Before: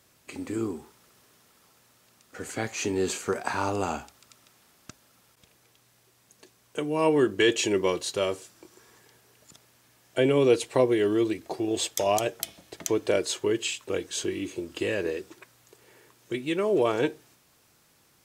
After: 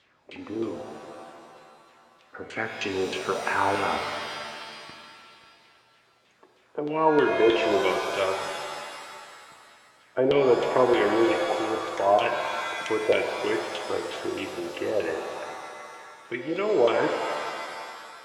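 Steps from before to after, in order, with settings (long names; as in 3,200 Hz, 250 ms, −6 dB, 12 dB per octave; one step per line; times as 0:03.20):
low-shelf EQ 280 Hz −7.5 dB
auto-filter low-pass saw down 3.2 Hz 510–3,600 Hz
reverb with rising layers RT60 2.2 s, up +7 semitones, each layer −2 dB, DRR 5.5 dB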